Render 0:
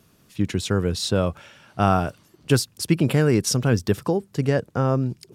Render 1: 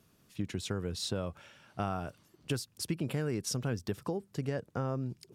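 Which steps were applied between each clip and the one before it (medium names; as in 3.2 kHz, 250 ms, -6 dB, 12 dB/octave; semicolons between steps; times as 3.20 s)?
compression 3:1, threshold -23 dBFS, peak gain reduction 8.5 dB; trim -8.5 dB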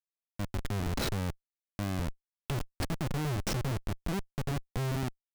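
harmonic-percussive split percussive -6 dB; Schmitt trigger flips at -37 dBFS; trim +7.5 dB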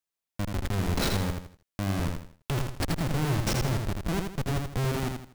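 in parallel at 0 dB: peak limiter -33 dBFS, peak gain reduction 8 dB; on the sum: bit-crushed delay 81 ms, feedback 35%, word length 10-bit, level -4.5 dB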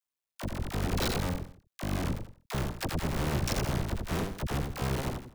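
cycle switcher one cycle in 2, muted; phase dispersion lows, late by 47 ms, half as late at 600 Hz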